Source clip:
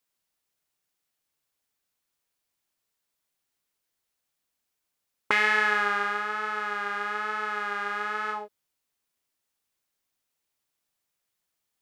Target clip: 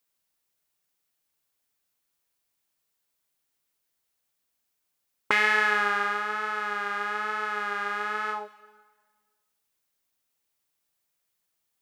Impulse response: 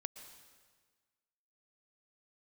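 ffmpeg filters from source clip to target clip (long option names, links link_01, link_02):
-filter_complex "[0:a]asplit=2[link_01][link_02];[1:a]atrim=start_sample=2205,highshelf=frequency=8900:gain=11[link_03];[link_02][link_03]afir=irnorm=-1:irlink=0,volume=-4.5dB[link_04];[link_01][link_04]amix=inputs=2:normalize=0,volume=-2.5dB"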